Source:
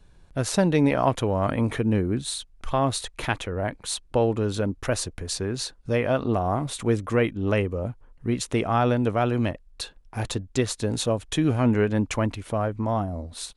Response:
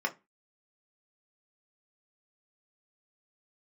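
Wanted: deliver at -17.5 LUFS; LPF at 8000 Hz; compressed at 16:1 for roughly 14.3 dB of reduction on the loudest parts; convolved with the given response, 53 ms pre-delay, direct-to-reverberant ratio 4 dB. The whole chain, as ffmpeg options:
-filter_complex "[0:a]lowpass=8k,acompressor=threshold=-31dB:ratio=16,asplit=2[a][b];[1:a]atrim=start_sample=2205,adelay=53[c];[b][c]afir=irnorm=-1:irlink=0,volume=-11dB[d];[a][d]amix=inputs=2:normalize=0,volume=18dB"

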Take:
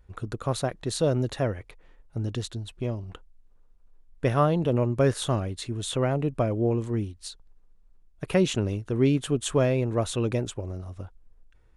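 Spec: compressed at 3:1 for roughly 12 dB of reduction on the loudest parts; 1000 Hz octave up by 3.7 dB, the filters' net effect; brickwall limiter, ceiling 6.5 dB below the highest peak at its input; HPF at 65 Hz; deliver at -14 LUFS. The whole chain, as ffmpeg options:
-af "highpass=65,equalizer=f=1k:t=o:g=5,acompressor=threshold=-33dB:ratio=3,volume=23dB,alimiter=limit=-2.5dB:level=0:latency=1"

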